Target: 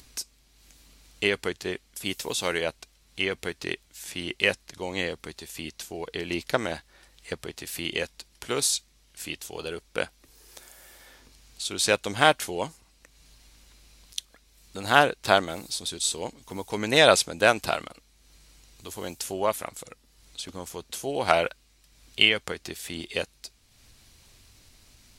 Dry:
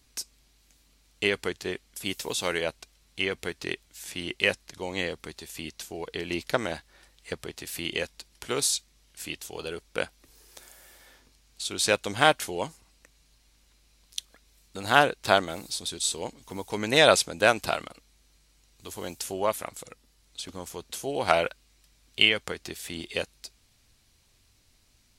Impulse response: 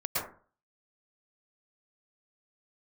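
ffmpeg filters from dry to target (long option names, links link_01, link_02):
-af "acompressor=mode=upward:threshold=-47dB:ratio=2.5,volume=1dB"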